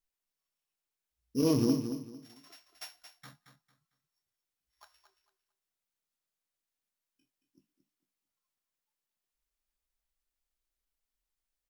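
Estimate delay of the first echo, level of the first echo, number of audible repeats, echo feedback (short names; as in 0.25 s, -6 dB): 0.225 s, -9.5 dB, 3, 26%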